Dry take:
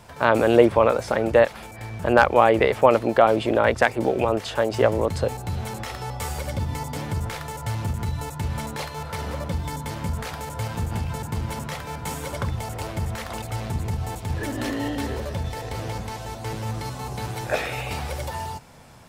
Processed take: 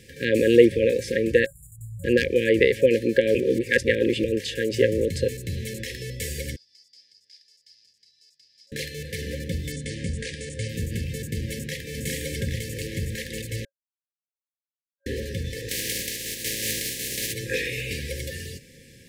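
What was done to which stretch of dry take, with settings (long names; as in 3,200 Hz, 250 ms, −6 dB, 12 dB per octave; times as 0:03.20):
0:01.46–0:02.04: linear-phase brick-wall band-stop 170–6,900 Hz
0:03.35–0:04.24: reverse
0:06.56–0:08.72: resonant band-pass 5,000 Hz, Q 20
0:09.72–0:10.69: linear-phase brick-wall low-pass 10,000 Hz
0:11.53–0:11.99: delay throw 410 ms, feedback 65%, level −1 dB
0:13.65–0:15.06: silence
0:15.68–0:17.32: compressing power law on the bin magnitudes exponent 0.32
whole clip: brick-wall band-stop 550–1,600 Hz; low-shelf EQ 150 Hz −6 dB; level +2 dB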